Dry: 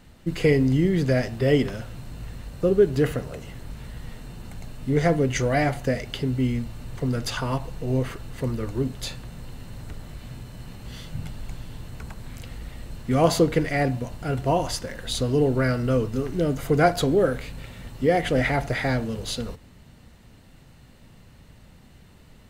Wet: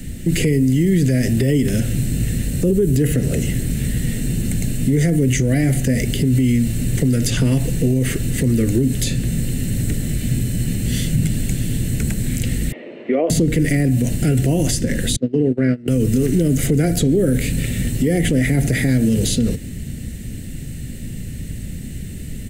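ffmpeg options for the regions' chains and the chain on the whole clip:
-filter_complex "[0:a]asettb=1/sr,asplit=3[a][b][c];[a]atrim=end=12.724[d];[b]atrim=start=12.72:end=13.3,asetpts=PTS-STARTPTS,afade=t=in:d=0.004:c=qsin,afade=t=out:st=0.576:d=0.004:c=qsin,highpass=f=360:w=0.5412,highpass=f=360:w=1.3066,equalizer=f=380:t=q:w=4:g=4,equalizer=f=600:t=q:w=4:g=8,equalizer=f=1k:t=q:w=4:g=8,equalizer=f=1.6k:t=q:w=4:g=-9,lowpass=f=2.4k:w=0.5412,lowpass=f=2.4k:w=1.3066,acrossover=split=530|1600[e][f][g];[e]acompressor=threshold=-33dB:ratio=4[h];[f]acompressor=threshold=-16dB:ratio=4[i];[g]acompressor=threshold=-40dB:ratio=4[j];[h][i][j]amix=inputs=3:normalize=0[k];[c]atrim=start=13.296[l];[d][k]acrossfade=d=0.004:c1=hsin:c2=qsin[m];[m][l]acrossfade=d=0.004:c1=qsin:c2=hsin,asettb=1/sr,asplit=3[n][o][p];[n]atrim=end=15.164[q];[o]atrim=start=15.16:end=15.88,asetpts=PTS-STARTPTS,afade=t=in:d=0.004:c=qsin,afade=t=out:st=0.716:d=0.004:c=qsin,agate=range=-28dB:threshold=-22dB:ratio=16:release=100:detection=peak,highpass=210,lowpass=2.5k[r];[p]atrim=start=15.876[s];[q][r]acrossfade=d=0.004:c1=hsin:c2=qsin[t];[t][s]acrossfade=d=0.004:c1=qsin:c2=hsin,firequalizer=gain_entry='entry(250,0);entry(1000,-29);entry(1800,-7);entry(4600,-9);entry(8000,4);entry(13000,1)':delay=0.05:min_phase=1,acrossover=split=120|510|7600[u][v][w][x];[u]acompressor=threshold=-44dB:ratio=4[y];[v]acompressor=threshold=-32dB:ratio=4[z];[w]acompressor=threshold=-45dB:ratio=4[aa];[x]acompressor=threshold=-52dB:ratio=4[ab];[y][z][aa][ab]amix=inputs=4:normalize=0,alimiter=level_in=29.5dB:limit=-1dB:release=50:level=0:latency=1,volume=-7.5dB"

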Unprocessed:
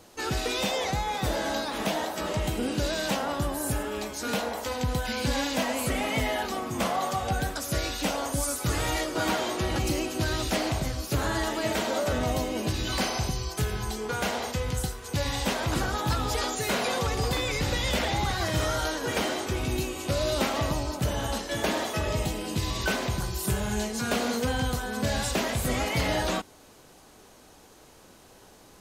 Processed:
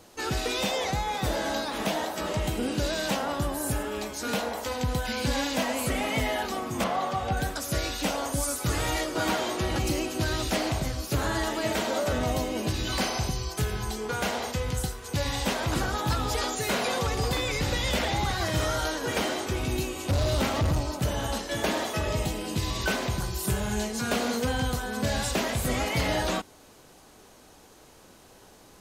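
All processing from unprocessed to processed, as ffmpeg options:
-filter_complex "[0:a]asettb=1/sr,asplit=3[a][b][c];[a]atrim=end=6.844[d];[b]atrim=start=6.84:end=7.37,asetpts=PTS-STARTPTS,afade=t=in:d=0.004:c=qsin,afade=t=out:st=0.526:d=0.004:c=qsin,acrossover=split=4700[e][f];[f]acompressor=threshold=-48dB:ratio=4:attack=1:release=60[g];[e][g]amix=inputs=2:normalize=0,highshelf=f=7k:g=-5.5[h];[c]atrim=start=7.366[i];[d][h]acrossfade=d=0.004:c1=hsin:c2=qsin[j];[j][i]acrossfade=d=0.004:c1=qsin:c2=hsin,asettb=1/sr,asplit=3[k][l][m];[k]atrim=end=20.104[n];[l]atrim=start=20.1:end=20.81,asetpts=PTS-STARTPTS,afade=t=in:d=0.004:c=qsin,afade=t=out:st=0.706:d=0.004:c=qsin,equalizer=f=90:w=0.97:g=13,asoftclip=type=hard:threshold=-21dB[o];[m]atrim=start=20.806[p];[n][o]acrossfade=d=0.004:c1=hsin:c2=qsin[q];[q][p]acrossfade=d=0.004:c1=qsin:c2=hsin"

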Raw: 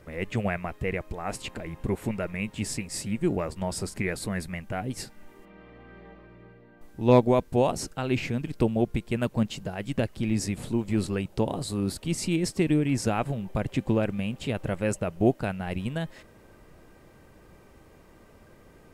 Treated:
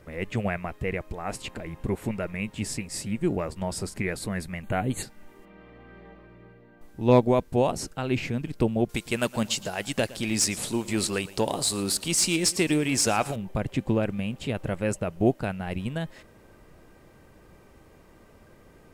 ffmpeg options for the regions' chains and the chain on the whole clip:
-filter_complex "[0:a]asettb=1/sr,asplit=3[a][b][c];[a]atrim=end=4.634[d];[b]atrim=start=4.63:end=5.03,asetpts=PTS-STARTPTS,afade=t=in:d=0.004:c=qsin,afade=t=out:st=0.396:d=0.004:c=qsin,asuperstop=centerf=5300:order=12:qfactor=3.1,acontrast=24[e];[c]atrim=start=5.026[f];[d][e]acrossfade=d=0.004:c1=hsin:c2=qsin[g];[g][f]acrossfade=d=0.004:c1=qsin:c2=hsin,asettb=1/sr,asplit=3[h][i][j];[h]atrim=end=8.894[k];[i]atrim=start=8.89:end=13.36,asetpts=PTS-STARTPTS,afade=t=in:d=0.004:c=qsin,afade=t=out:st=4.466:d=0.004:c=qsin,bass=f=250:g=-1,treble=f=4k:g=15,asplit=2[l][m];[m]highpass=f=720:p=1,volume=11dB,asoftclip=type=tanh:threshold=-8.5dB[n];[l][n]amix=inputs=2:normalize=0,lowpass=f=4k:p=1,volume=-6dB,aecho=1:1:114|228|342:0.112|0.037|0.0122,atrim=end_sample=197127[o];[j]atrim=start=13.356[p];[k][o]acrossfade=d=0.004:c1=hsin:c2=qsin[q];[q][p]acrossfade=d=0.004:c1=qsin:c2=hsin"

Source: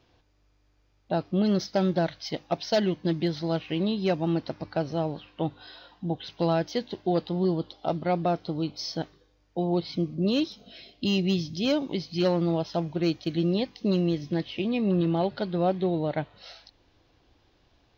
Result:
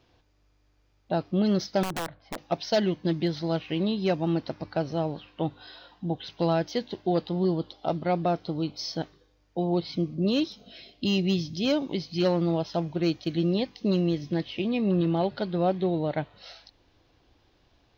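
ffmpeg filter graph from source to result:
-filter_complex "[0:a]asettb=1/sr,asplit=3[a][b][c];[a]atrim=end=1.834[d];[b]atrim=start=1.83:end=2.38,asetpts=PTS-STARTPTS,afade=t=in:d=0.004:c=qsin,afade=t=out:st=0.546:d=0.004:c=qsin,lowpass=1.1k,acompressor=threshold=-26dB:ratio=16:attack=3.2:release=140:knee=1:detection=peak,aeval=exprs='(mod(18.8*val(0)+1,2)-1)/18.8':c=same[e];[c]atrim=start=2.376[f];[d][e]acrossfade=d=0.004:c1=hsin:c2=qsin[g];[g][f]acrossfade=d=0.004:c1=qsin:c2=hsin"

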